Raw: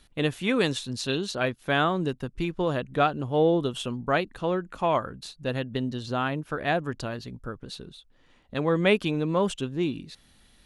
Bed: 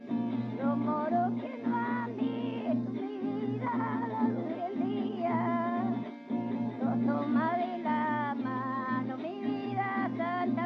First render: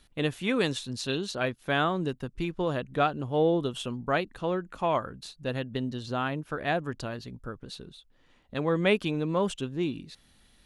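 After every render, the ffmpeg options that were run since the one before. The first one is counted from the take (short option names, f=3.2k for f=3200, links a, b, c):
-af "volume=-2.5dB"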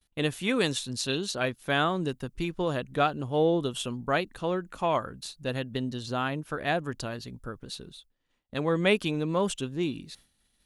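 -af "agate=range=-33dB:threshold=-51dB:ratio=3:detection=peak,highshelf=f=5.6k:g=9"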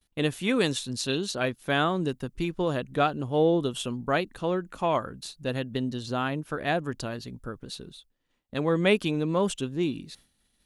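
-af "equalizer=f=270:t=o:w=2.1:g=2.5"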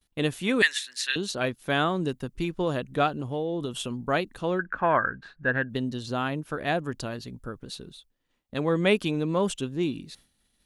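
-filter_complex "[0:a]asettb=1/sr,asplit=3[a][b][c];[a]atrim=end=0.624[d];[b]atrim=start=0.62:end=1.16,asetpts=PTS-STARTPTS,afade=t=in:d=0.004:c=qsin,afade=t=out:st=0.536:d=0.004:c=qsin,highpass=f=1.8k:t=q:w=6.7[e];[c]atrim=start=1.156[f];[d][e]acrossfade=d=0.004:c1=hsin:c2=qsin[g];[g][f]acrossfade=d=0.004:c1=qsin:c2=hsin,asettb=1/sr,asplit=3[h][i][j];[h]atrim=end=3.084[k];[i]atrim=start=3.08:end=4.02,asetpts=PTS-STARTPTS,afade=t=in:d=0.004:c=qsin,afade=t=out:st=0.936:d=0.004:c=qsin,acompressor=threshold=-26dB:ratio=5:attack=3.2:release=140:knee=1:detection=peak[l];[j]atrim=start=4.016[m];[k][l]acrossfade=d=0.004:c1=hsin:c2=qsin[n];[n][m]acrossfade=d=0.004:c1=qsin:c2=hsin,asettb=1/sr,asplit=3[o][p][q];[o]atrim=end=4.594[r];[p]atrim=start=4.59:end=5.7,asetpts=PTS-STARTPTS,afade=t=in:d=0.004:c=qsin,afade=t=out:st=1.106:d=0.004:c=qsin,lowpass=f=1.6k:t=q:w=13[s];[q]atrim=start=5.696[t];[r][s]acrossfade=d=0.004:c1=hsin:c2=qsin[u];[u][t]acrossfade=d=0.004:c1=qsin:c2=hsin"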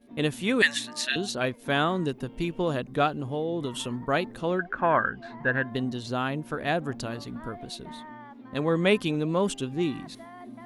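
-filter_complex "[1:a]volume=-13dB[a];[0:a][a]amix=inputs=2:normalize=0"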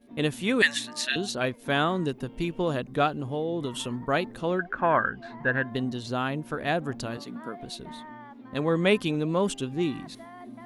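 -filter_complex "[0:a]asettb=1/sr,asplit=3[a][b][c];[a]atrim=end=7.174[d];[b]atrim=start=7.17:end=7.6,asetpts=PTS-STARTPTS,afade=t=in:d=0.004:c=qsin,afade=t=out:st=0.426:d=0.004:c=qsin,highpass=f=170:w=0.5412,highpass=f=170:w=1.3066[e];[c]atrim=start=7.596[f];[d][e]acrossfade=d=0.004:c1=hsin:c2=qsin[g];[g][f]acrossfade=d=0.004:c1=qsin:c2=hsin"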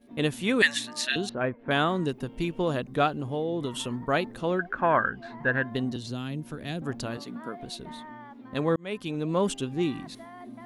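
-filter_complex "[0:a]asettb=1/sr,asplit=3[a][b][c];[a]atrim=end=1.294[d];[b]atrim=start=1.29:end=1.71,asetpts=PTS-STARTPTS,afade=t=in:d=0.004:c=qsin,afade=t=out:st=0.416:d=0.004:c=qsin,lowpass=f=2k:w=0.5412,lowpass=f=2k:w=1.3066[e];[c]atrim=start=1.706[f];[d][e]acrossfade=d=0.004:c1=hsin:c2=qsin[g];[g][f]acrossfade=d=0.004:c1=qsin:c2=hsin,asettb=1/sr,asplit=3[h][i][j];[h]atrim=end=5.964[k];[i]atrim=start=5.96:end=6.82,asetpts=PTS-STARTPTS,afade=t=in:d=0.004:c=qsin,afade=t=out:st=0.856:d=0.004:c=qsin,acrossover=split=320|3000[l][m][n];[m]acompressor=threshold=-53dB:ratio=2:attack=3.2:release=140:knee=2.83:detection=peak[o];[l][o][n]amix=inputs=3:normalize=0[p];[j]atrim=start=6.816[q];[k][p]acrossfade=d=0.004:c1=hsin:c2=qsin[r];[r][q]acrossfade=d=0.004:c1=qsin:c2=hsin,asplit=2[s][t];[s]atrim=end=8.76,asetpts=PTS-STARTPTS,afade=t=out:st=8.756:d=0.004:c=hsin[u];[t]atrim=start=8.76,asetpts=PTS-STARTPTS,afade=t=in:d=0.62[v];[u][v]concat=n=2:v=0:a=1"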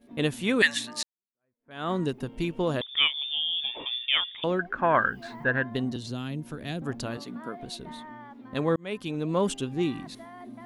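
-filter_complex "[0:a]asettb=1/sr,asplit=3[a][b][c];[a]atrim=end=2.814[d];[b]atrim=start=2.81:end=4.44,asetpts=PTS-STARTPTS,afade=t=in:d=0.004:c=qsin,afade=t=out:st=1.626:d=0.004:c=qsin,lowpass=f=3.1k:t=q:w=0.5098,lowpass=f=3.1k:t=q:w=0.6013,lowpass=f=3.1k:t=q:w=0.9,lowpass=f=3.1k:t=q:w=2.563,afreqshift=-3700[e];[c]atrim=start=4.436[f];[d][e]acrossfade=d=0.004:c1=hsin:c2=qsin[g];[g][f]acrossfade=d=0.004:c1=qsin:c2=hsin,asettb=1/sr,asplit=3[h][i][j];[h]atrim=end=4.944[k];[i]atrim=start=4.94:end=5.44,asetpts=PTS-STARTPTS,afade=t=in:d=0.004:c=qsin,afade=t=out:st=0.496:d=0.004:c=qsin,aemphasis=mode=production:type=75kf[l];[j]atrim=start=5.436[m];[k][l]acrossfade=d=0.004:c1=hsin:c2=qsin[n];[n][m]acrossfade=d=0.004:c1=qsin:c2=hsin,asplit=2[o][p];[o]atrim=end=1.03,asetpts=PTS-STARTPTS,afade=t=out:st=1.026:d=0.004:c=hsin[q];[p]atrim=start=1.03,asetpts=PTS-STARTPTS,afade=t=in:d=0.88:c=exp[r];[q][r]concat=n=2:v=0:a=1"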